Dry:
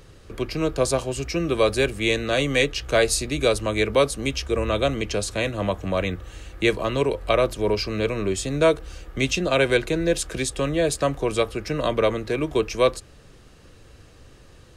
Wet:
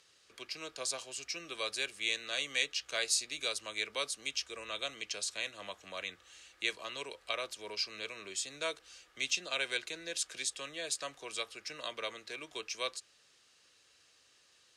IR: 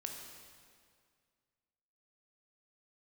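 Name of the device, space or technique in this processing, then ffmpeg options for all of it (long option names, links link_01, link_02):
piezo pickup straight into a mixer: -af "lowpass=5700,aderivative"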